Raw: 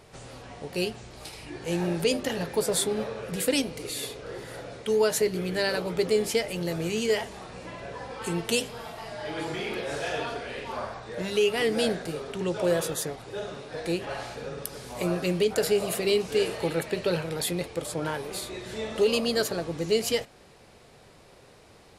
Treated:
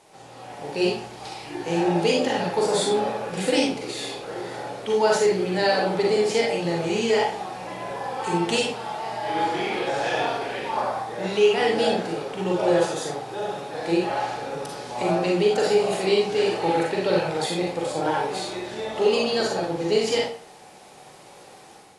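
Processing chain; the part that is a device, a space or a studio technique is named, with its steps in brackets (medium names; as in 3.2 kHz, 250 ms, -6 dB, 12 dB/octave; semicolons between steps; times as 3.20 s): filmed off a television (band-pass 170–6600 Hz; peaking EQ 820 Hz +11.5 dB 0.29 oct; reverberation RT60 0.45 s, pre-delay 35 ms, DRR -2 dB; white noise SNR 29 dB; level rider gain up to 7 dB; trim -5.5 dB; AAC 48 kbps 24 kHz)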